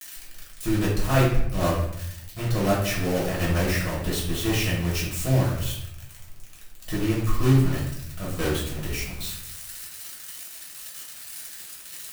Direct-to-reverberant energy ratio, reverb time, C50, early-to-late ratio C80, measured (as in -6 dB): -6.5 dB, 0.75 s, 3.0 dB, 6.5 dB